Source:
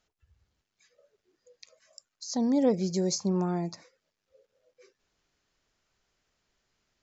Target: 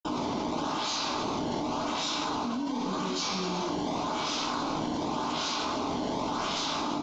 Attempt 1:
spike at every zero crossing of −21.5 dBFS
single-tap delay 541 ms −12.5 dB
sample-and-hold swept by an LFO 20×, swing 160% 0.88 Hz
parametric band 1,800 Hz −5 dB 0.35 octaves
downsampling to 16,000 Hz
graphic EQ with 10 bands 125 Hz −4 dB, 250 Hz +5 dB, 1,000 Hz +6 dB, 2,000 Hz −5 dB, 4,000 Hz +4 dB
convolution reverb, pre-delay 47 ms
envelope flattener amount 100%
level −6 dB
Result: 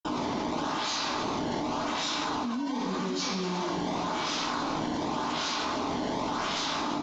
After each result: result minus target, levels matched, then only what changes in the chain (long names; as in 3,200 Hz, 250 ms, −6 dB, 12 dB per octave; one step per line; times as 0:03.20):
spike at every zero crossing: distortion −7 dB; 2,000 Hz band +2.5 dB
change: spike at every zero crossing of −14 dBFS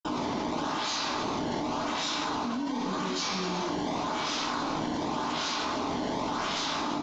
2,000 Hz band +3.0 dB
change: parametric band 1,800 Hz −14.5 dB 0.35 octaves